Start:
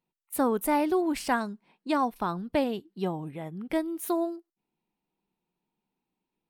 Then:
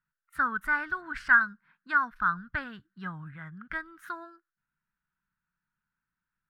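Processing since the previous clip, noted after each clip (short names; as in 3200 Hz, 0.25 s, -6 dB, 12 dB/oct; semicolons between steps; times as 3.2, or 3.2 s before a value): EQ curve 120 Hz 0 dB, 390 Hz -27 dB, 800 Hz -20 dB, 1500 Hz +15 dB, 2400 Hz -10 dB, 5200 Hz -15 dB, 11000 Hz -27 dB; gain +3 dB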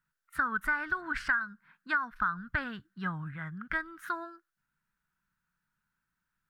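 compressor 12:1, threshold -29 dBFS, peak gain reduction 14.5 dB; gain +3.5 dB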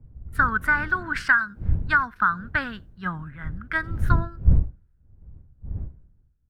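wind noise 92 Hz -37 dBFS; speakerphone echo 90 ms, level -29 dB; three-band expander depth 70%; gain +6.5 dB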